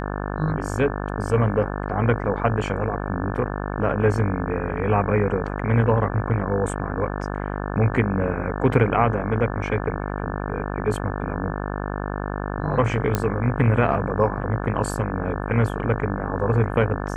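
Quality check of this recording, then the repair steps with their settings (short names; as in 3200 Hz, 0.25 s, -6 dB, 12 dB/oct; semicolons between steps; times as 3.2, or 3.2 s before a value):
buzz 50 Hz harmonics 35 -28 dBFS
13.15 pop -7 dBFS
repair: de-click; de-hum 50 Hz, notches 35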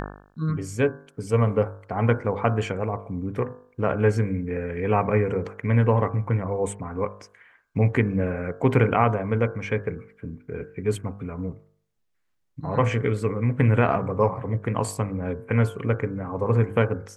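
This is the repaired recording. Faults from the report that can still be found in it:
none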